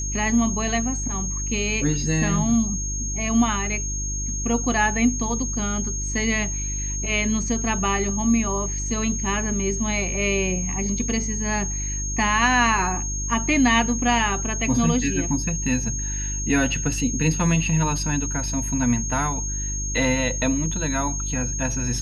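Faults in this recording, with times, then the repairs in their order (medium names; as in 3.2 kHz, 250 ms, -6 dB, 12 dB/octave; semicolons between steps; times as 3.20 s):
hum 50 Hz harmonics 7 -29 dBFS
whine 6.5 kHz -28 dBFS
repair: de-hum 50 Hz, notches 7; band-stop 6.5 kHz, Q 30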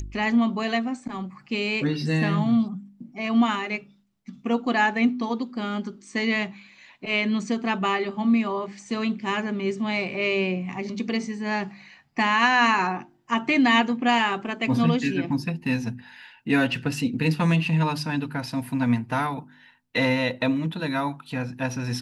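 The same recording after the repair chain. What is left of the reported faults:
nothing left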